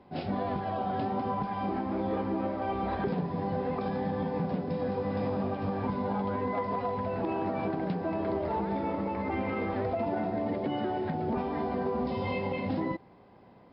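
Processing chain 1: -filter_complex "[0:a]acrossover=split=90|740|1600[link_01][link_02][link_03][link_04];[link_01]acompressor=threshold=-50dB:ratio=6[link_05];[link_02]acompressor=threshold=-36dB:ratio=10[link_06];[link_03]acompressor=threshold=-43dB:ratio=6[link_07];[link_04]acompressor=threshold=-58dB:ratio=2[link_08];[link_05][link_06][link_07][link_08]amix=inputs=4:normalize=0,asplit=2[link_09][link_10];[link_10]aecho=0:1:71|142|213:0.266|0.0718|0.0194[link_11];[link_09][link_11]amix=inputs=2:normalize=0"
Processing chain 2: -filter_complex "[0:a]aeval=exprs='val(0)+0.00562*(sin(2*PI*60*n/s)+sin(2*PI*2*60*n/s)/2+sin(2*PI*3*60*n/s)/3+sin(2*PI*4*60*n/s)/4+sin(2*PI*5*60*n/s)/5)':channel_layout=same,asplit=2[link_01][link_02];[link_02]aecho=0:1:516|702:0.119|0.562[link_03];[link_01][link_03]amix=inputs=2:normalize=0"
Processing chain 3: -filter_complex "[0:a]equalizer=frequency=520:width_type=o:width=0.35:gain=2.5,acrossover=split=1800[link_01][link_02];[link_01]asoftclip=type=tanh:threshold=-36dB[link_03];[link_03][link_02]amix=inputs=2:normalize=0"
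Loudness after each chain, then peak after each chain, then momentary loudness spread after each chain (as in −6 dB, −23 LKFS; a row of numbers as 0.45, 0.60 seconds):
−37.0, −30.5, −38.0 LKFS; −24.0, −18.0, −29.0 dBFS; 2, 2, 1 LU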